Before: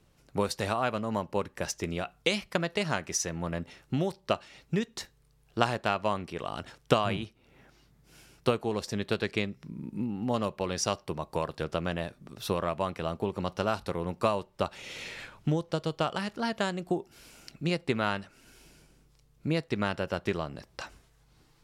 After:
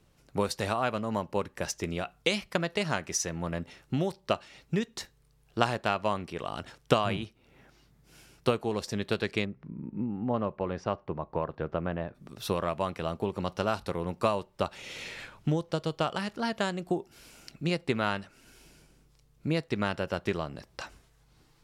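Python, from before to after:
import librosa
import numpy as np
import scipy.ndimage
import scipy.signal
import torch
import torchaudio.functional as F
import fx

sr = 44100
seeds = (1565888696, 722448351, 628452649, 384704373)

y = fx.lowpass(x, sr, hz=1600.0, slope=12, at=(9.44, 12.14), fade=0.02)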